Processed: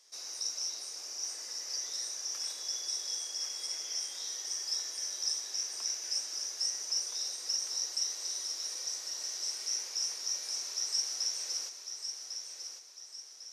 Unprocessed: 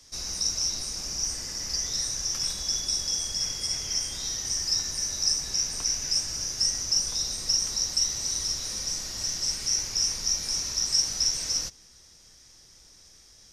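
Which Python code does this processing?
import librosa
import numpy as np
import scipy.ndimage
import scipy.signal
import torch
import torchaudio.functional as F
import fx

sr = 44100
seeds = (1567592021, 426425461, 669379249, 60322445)

p1 = fx.octave_divider(x, sr, octaves=2, level_db=1.0)
p2 = scipy.signal.sosfilt(scipy.signal.butter(4, 400.0, 'highpass', fs=sr, output='sos'), p1)
p3 = p2 + fx.echo_feedback(p2, sr, ms=1100, feedback_pct=42, wet_db=-7.5, dry=0)
y = p3 * librosa.db_to_amplitude(-8.5)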